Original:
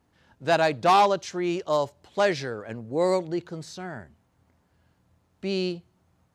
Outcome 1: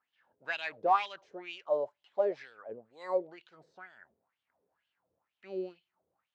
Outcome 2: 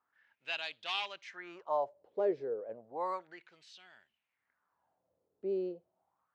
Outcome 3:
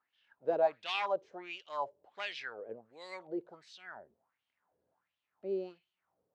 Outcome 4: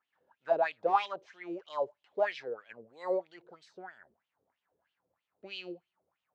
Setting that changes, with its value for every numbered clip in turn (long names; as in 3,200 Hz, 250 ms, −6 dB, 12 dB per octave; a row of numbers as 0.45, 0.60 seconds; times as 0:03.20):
LFO wah, speed: 2.1, 0.32, 1.4, 3.1 Hertz